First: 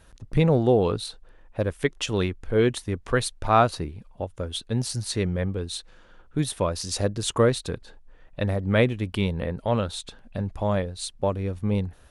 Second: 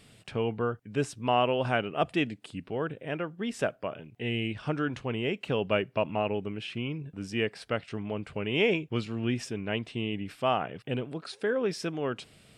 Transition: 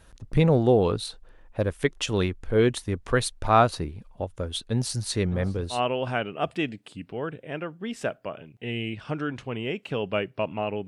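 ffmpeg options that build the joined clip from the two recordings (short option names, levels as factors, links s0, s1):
-filter_complex "[0:a]asplit=3[s0][s1][s2];[s0]afade=t=out:st=5.26:d=0.02[s3];[s1]asplit=2[s4][s5];[s5]adelay=610,lowpass=f=1900:p=1,volume=0.2,asplit=2[s6][s7];[s7]adelay=610,lowpass=f=1900:p=1,volume=0.46,asplit=2[s8][s9];[s9]adelay=610,lowpass=f=1900:p=1,volume=0.46,asplit=2[s10][s11];[s11]adelay=610,lowpass=f=1900:p=1,volume=0.46[s12];[s4][s6][s8][s10][s12]amix=inputs=5:normalize=0,afade=t=in:st=5.26:d=0.02,afade=t=out:st=5.81:d=0.02[s13];[s2]afade=t=in:st=5.81:d=0.02[s14];[s3][s13][s14]amix=inputs=3:normalize=0,apad=whole_dur=10.87,atrim=end=10.87,atrim=end=5.81,asetpts=PTS-STARTPTS[s15];[1:a]atrim=start=1.27:end=6.45,asetpts=PTS-STARTPTS[s16];[s15][s16]acrossfade=d=0.12:c1=tri:c2=tri"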